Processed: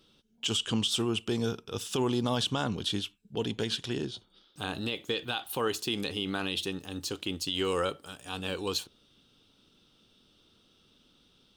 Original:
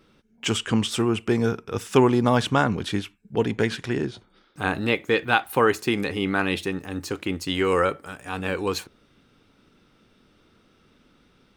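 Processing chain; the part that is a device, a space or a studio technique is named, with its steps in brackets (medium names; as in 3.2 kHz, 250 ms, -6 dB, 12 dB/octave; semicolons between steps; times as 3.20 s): over-bright horn tweeter (resonant high shelf 2.6 kHz +6.5 dB, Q 3; peak limiter -11.5 dBFS, peak gain reduction 9.5 dB); trim -7.5 dB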